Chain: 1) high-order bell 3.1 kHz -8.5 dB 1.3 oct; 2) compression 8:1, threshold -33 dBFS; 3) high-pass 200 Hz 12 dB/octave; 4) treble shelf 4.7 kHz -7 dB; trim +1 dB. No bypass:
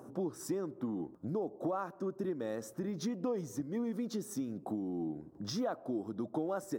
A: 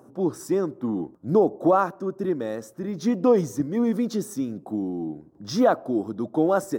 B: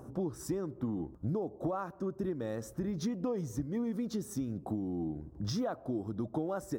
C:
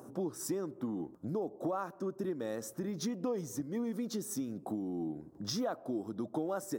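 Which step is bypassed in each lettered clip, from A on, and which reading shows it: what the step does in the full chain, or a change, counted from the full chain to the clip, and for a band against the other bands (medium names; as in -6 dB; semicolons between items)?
2, mean gain reduction 9.5 dB; 3, 125 Hz band +6.5 dB; 4, 8 kHz band +5.0 dB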